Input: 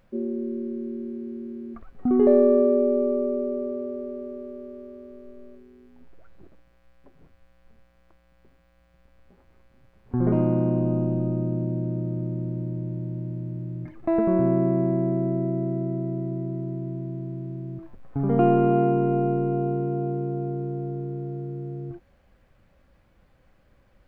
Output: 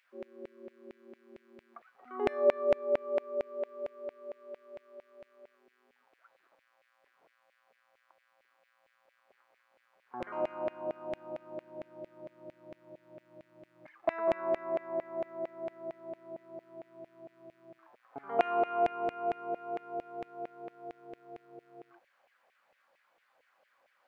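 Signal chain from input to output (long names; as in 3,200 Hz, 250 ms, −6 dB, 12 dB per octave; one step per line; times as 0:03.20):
auto-filter high-pass saw down 4.4 Hz 570–2,300 Hz
level −5.5 dB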